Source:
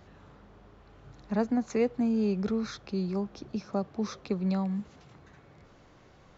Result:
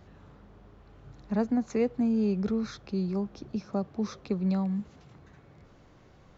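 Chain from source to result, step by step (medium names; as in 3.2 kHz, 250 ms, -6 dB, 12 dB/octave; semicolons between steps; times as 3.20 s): bass shelf 360 Hz +5 dB; trim -2.5 dB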